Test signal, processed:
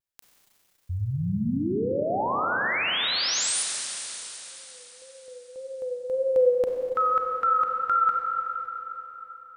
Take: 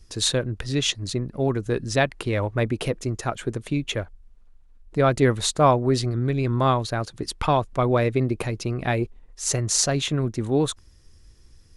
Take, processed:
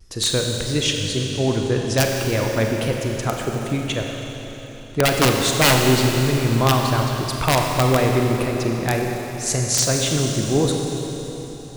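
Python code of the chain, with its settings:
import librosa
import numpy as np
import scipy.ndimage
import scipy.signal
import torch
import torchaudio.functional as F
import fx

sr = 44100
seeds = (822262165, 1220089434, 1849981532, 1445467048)

y = fx.vibrato(x, sr, rate_hz=1.8, depth_cents=72.0)
y = (np.mod(10.0 ** (10.5 / 20.0) * y + 1.0, 2.0) - 1.0) / 10.0 ** (10.5 / 20.0)
y = fx.rev_schroeder(y, sr, rt60_s=3.9, comb_ms=31, drr_db=1.0)
y = F.gain(torch.from_numpy(y), 1.5).numpy()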